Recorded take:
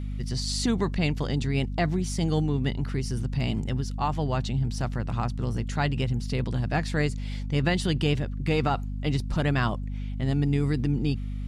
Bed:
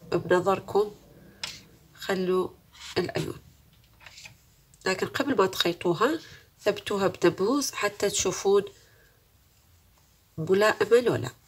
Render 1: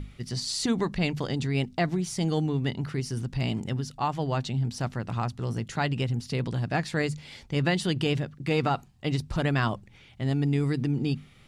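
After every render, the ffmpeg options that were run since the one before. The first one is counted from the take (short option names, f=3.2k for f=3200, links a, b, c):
-af "bandreject=f=50:t=h:w=6,bandreject=f=100:t=h:w=6,bandreject=f=150:t=h:w=6,bandreject=f=200:t=h:w=6,bandreject=f=250:t=h:w=6"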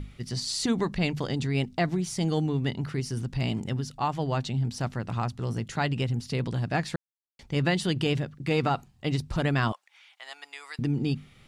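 -filter_complex "[0:a]asettb=1/sr,asplit=3[a][b][c];[a]atrim=end=9.724[d];[b]atrim=start=9.72:end=10.79,asetpts=PTS-STARTPTS,afade=t=in:d=0.004:c=qsin,afade=t=out:st=1.066:d=0.004:c=qsin,highpass=f=860:w=0.5412,highpass=f=860:w=1.3066[e];[c]atrim=start=10.786[f];[d][e]acrossfade=d=0.004:c1=hsin:c2=qsin[g];[g][f]acrossfade=d=0.004:c1=qsin:c2=hsin,asplit=3[h][i][j];[h]atrim=end=6.96,asetpts=PTS-STARTPTS,afade=t=out:st=6.956:d=0.004:c=hsin[k];[i]atrim=start=6.96:end=7.39,asetpts=PTS-STARTPTS,volume=0[l];[j]atrim=start=7.39,asetpts=PTS-STARTPTS,afade=t=in:d=0.004:c=hsin[m];[k][l][m]concat=n=3:v=0:a=1"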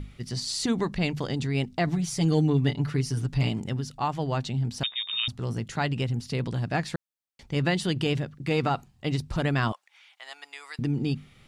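-filter_complex "[0:a]asettb=1/sr,asplit=3[a][b][c];[a]atrim=end=1.864[d];[b]atrim=start=1.86:end=3.49,asetpts=PTS-STARTPTS,afade=t=in:d=0.004:c=qsin,afade=t=out:st=1.626:d=0.004:c=qsin,aecho=1:1:6.9:0.78,atrim=end_sample=71883[e];[c]atrim=start=3.486[f];[d][e]acrossfade=d=0.004:c1=hsin:c2=qsin[g];[g][f]acrossfade=d=0.004:c1=qsin:c2=hsin,asettb=1/sr,asplit=3[h][i][j];[h]atrim=end=4.834[k];[i]atrim=start=4.83:end=5.28,asetpts=PTS-STARTPTS,afade=t=in:d=0.004:c=qsin,afade=t=out:st=0.446:d=0.004:c=qsin,lowpass=f=3.2k:t=q:w=0.5098,lowpass=f=3.2k:t=q:w=0.6013,lowpass=f=3.2k:t=q:w=0.9,lowpass=f=3.2k:t=q:w=2.563,afreqshift=-3800[l];[j]atrim=start=5.276[m];[k][l]acrossfade=d=0.004:c1=hsin:c2=qsin[n];[n][m]acrossfade=d=0.004:c1=qsin:c2=hsin"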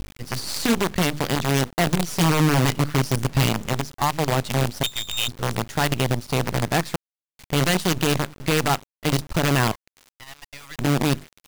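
-af "aeval=exprs='0.282*(cos(1*acos(clip(val(0)/0.282,-1,1)))-cos(1*PI/2))+0.1*(cos(2*acos(clip(val(0)/0.282,-1,1)))-cos(2*PI/2))+0.0178*(cos(4*acos(clip(val(0)/0.282,-1,1)))-cos(4*PI/2))+0.0562*(cos(5*acos(clip(val(0)/0.282,-1,1)))-cos(5*PI/2))+0.00282*(cos(8*acos(clip(val(0)/0.282,-1,1)))-cos(8*PI/2))':c=same,acrusher=bits=4:dc=4:mix=0:aa=0.000001"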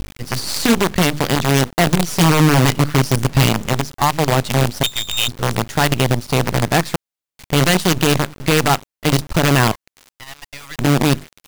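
-af "volume=6dB"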